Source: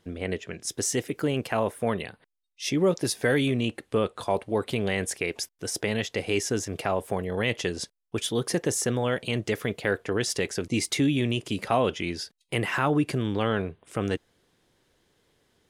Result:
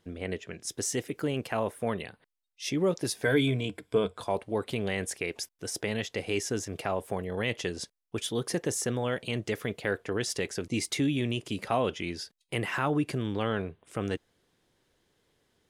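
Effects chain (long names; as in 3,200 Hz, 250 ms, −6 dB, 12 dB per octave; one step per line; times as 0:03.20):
0:03.25–0:04.18: EQ curve with evenly spaced ripples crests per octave 1.7, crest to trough 11 dB
level −4 dB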